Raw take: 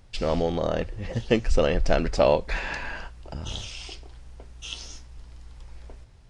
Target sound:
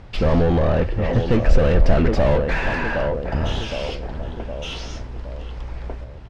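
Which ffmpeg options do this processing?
ffmpeg -i in.wav -filter_complex "[0:a]asplit=2[link_01][link_02];[link_02]adelay=764,lowpass=frequency=860:poles=1,volume=-12dB,asplit=2[link_03][link_04];[link_04]adelay=764,lowpass=frequency=860:poles=1,volume=0.5,asplit=2[link_05][link_06];[link_06]adelay=764,lowpass=frequency=860:poles=1,volume=0.5,asplit=2[link_07][link_08];[link_08]adelay=764,lowpass=frequency=860:poles=1,volume=0.5,asplit=2[link_09][link_10];[link_10]adelay=764,lowpass=frequency=860:poles=1,volume=0.5[link_11];[link_01][link_03][link_05][link_07][link_09][link_11]amix=inputs=6:normalize=0,asplit=2[link_12][link_13];[link_13]highpass=frequency=720:poles=1,volume=31dB,asoftclip=type=tanh:threshold=-7dB[link_14];[link_12][link_14]amix=inputs=2:normalize=0,lowpass=frequency=3500:poles=1,volume=-6dB,aemphasis=mode=reproduction:type=riaa,volume=-7.5dB" out.wav

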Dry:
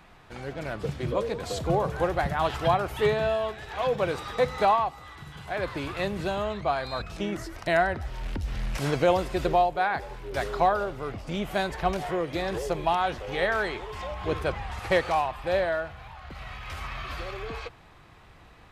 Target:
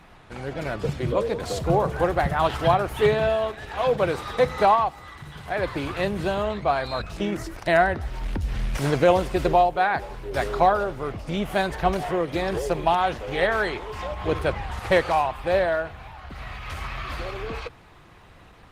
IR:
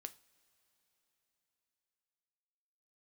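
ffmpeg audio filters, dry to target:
-af "volume=4.5dB" -ar 48000 -c:a libopus -b:a 20k

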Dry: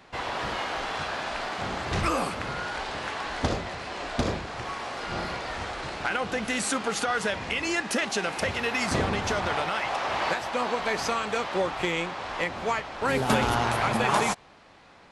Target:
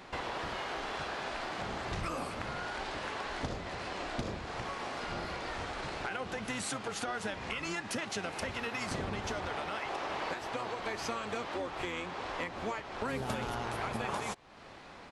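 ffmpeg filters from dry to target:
ffmpeg -i in.wav -filter_complex "[0:a]acompressor=threshold=-41dB:ratio=3,asplit=2[link_01][link_02];[link_02]asetrate=22050,aresample=44100,atempo=2,volume=-7dB[link_03];[link_01][link_03]amix=inputs=2:normalize=0,volume=2dB" out.wav

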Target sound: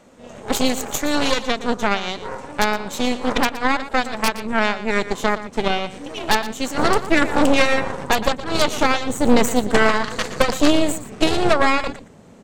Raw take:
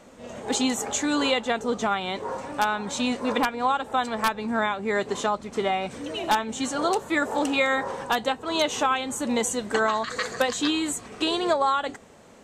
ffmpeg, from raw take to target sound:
ffmpeg -i in.wav -af "asetnsamples=nb_out_samples=441:pad=0,asendcmd='6.78 equalizer g 12',equalizer=frequency=140:width=0.51:gain=2,aeval=exprs='0.501*(cos(1*acos(clip(val(0)/0.501,-1,1)))-cos(1*PI/2))+0.141*(cos(6*acos(clip(val(0)/0.501,-1,1)))-cos(6*PI/2))+0.0224*(cos(7*acos(clip(val(0)/0.501,-1,1)))-cos(7*PI/2))':channel_layout=same,aecho=1:1:118:0.2,volume=2dB" out.wav

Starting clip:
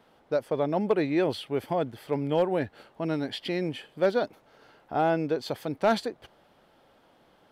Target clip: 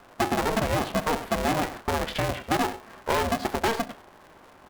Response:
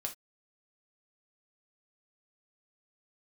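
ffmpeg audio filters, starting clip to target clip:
-filter_complex "[0:a]atempo=1.6,acrossover=split=330 2100:gain=0.251 1 0.224[link_01][link_02][link_03];[link_01][link_02][link_03]amix=inputs=3:normalize=0,asplit=2[link_04][link_05];[1:a]atrim=start_sample=2205,lowpass=2800[link_06];[link_05][link_06]afir=irnorm=-1:irlink=0,volume=-0.5dB[link_07];[link_04][link_07]amix=inputs=2:normalize=0,asoftclip=type=hard:threshold=-20.5dB,highshelf=frequency=3400:gain=9.5,aecho=1:1:96:0.133,acompressor=threshold=-29dB:ratio=6,aeval=exprs='val(0)*sgn(sin(2*PI*230*n/s))':channel_layout=same,volume=6.5dB"

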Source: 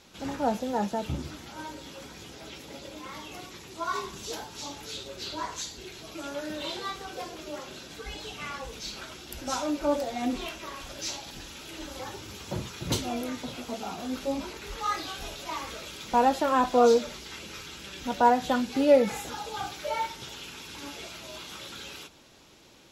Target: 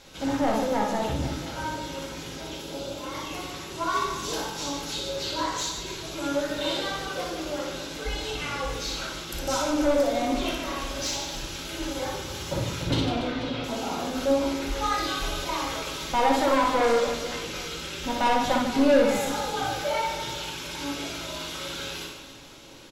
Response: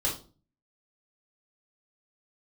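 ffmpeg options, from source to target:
-filter_complex "[0:a]asettb=1/sr,asplit=3[link_01][link_02][link_03];[link_01]atrim=end=2.444[link_04];[link_02]atrim=start=2.44:end=3.14,asetpts=PTS-STARTPTS,afade=type=in:duration=0.004:curve=qsin,afade=type=out:start_time=0.696:duration=0.004:curve=qsin,equalizer=frequency=2000:width=3.1:gain=-8[link_05];[link_03]atrim=start=3.136[link_06];[link_04][link_05]acrossfade=duration=0.004:curve1=hsin:curve2=qsin[link_07];[link_07][link_06]acrossfade=duration=0.004:curve1=qsin:curve2=hsin,asettb=1/sr,asplit=3[link_08][link_09][link_10];[link_08]atrim=end=12.834[link_11];[link_09]atrim=start=12.83:end=13.64,asetpts=PTS-STARTPTS,afade=type=in:duration=0.004:curve=qsin,afade=type=out:start_time=0.806:duration=0.004:curve=qsin,lowpass=frequency=4400:width=0.5412,lowpass=frequency=4400:width=1.3066[link_12];[link_10]atrim=start=13.636[link_13];[link_11][link_12]acrossfade=duration=0.004:curve1=hsin:curve2=qsin[link_14];[link_14][link_13]acrossfade=duration=0.004:curve1=qsin:curve2=hsin,asoftclip=type=tanh:threshold=-25.5dB,aecho=1:1:60|150|285|487.5|791.2:0.631|0.398|0.251|0.158|0.1,asplit=2[link_15][link_16];[1:a]atrim=start_sample=2205[link_17];[link_16][link_17]afir=irnorm=-1:irlink=0,volume=-8.5dB[link_18];[link_15][link_18]amix=inputs=2:normalize=0,volume=1.5dB"

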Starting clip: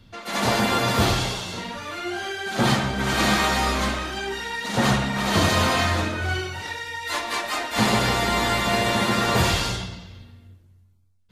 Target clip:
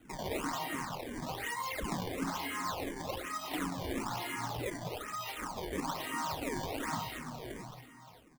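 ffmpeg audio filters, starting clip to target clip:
ffmpeg -i in.wav -filter_complex "[0:a]aemphasis=mode=production:type=75kf,bandreject=frequency=60:width_type=h:width=6,bandreject=frequency=120:width_type=h:width=6,asetrate=59535,aresample=44100,asplit=2[link_01][link_02];[link_02]aecho=0:1:572|1144:0.0891|0.0241[link_03];[link_01][link_03]amix=inputs=2:normalize=0,acompressor=threshold=-29dB:ratio=6,acrossover=split=170 2700:gain=0.178 1 0.141[link_04][link_05][link_06];[link_04][link_05][link_06]amix=inputs=3:normalize=0,bandreject=frequency=1800:width=12,aecho=1:1:1:0.64,acrusher=samples=19:mix=1:aa=0.000001:lfo=1:lforange=30.4:lforate=1.1,asplit=2[link_07][link_08];[link_08]afreqshift=-2.8[link_09];[link_07][link_09]amix=inputs=2:normalize=1" out.wav

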